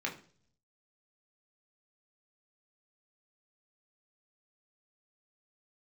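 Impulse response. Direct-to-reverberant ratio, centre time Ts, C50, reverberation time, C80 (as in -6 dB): -1.0 dB, 18 ms, 11.5 dB, 0.45 s, 16.5 dB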